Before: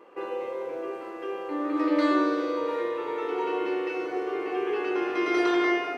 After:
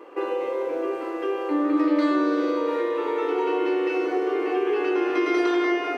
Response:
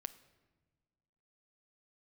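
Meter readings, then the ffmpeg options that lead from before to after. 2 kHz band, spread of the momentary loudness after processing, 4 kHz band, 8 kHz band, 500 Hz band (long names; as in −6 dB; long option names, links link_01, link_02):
+1.5 dB, 6 LU, +1.5 dB, can't be measured, +4.5 dB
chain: -filter_complex "[0:a]acompressor=threshold=-30dB:ratio=2.5,asplit=2[link_01][link_02];[link_02]lowshelf=frequency=190:width_type=q:width=3:gain=-13[link_03];[1:a]atrim=start_sample=2205[link_04];[link_03][link_04]afir=irnorm=-1:irlink=0,volume=4dB[link_05];[link_01][link_05]amix=inputs=2:normalize=0"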